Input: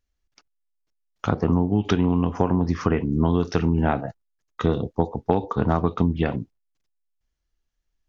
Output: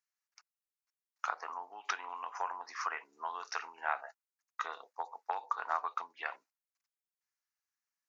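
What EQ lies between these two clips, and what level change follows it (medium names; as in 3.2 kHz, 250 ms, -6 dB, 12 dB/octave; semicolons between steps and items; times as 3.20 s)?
high-pass 960 Hz 24 dB/octave; peaking EQ 3.3 kHz -12.5 dB 0.49 oct; -3.0 dB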